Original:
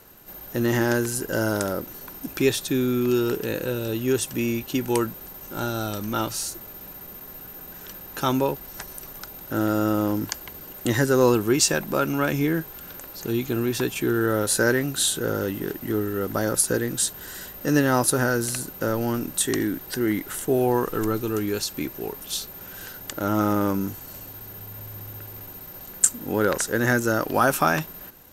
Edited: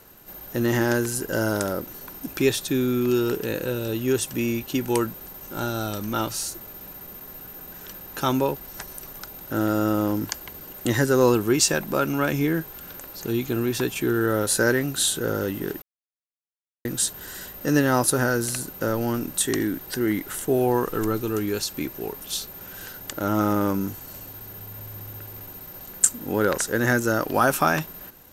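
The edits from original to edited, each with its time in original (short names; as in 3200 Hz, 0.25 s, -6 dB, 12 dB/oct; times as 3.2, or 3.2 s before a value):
15.82–16.85 mute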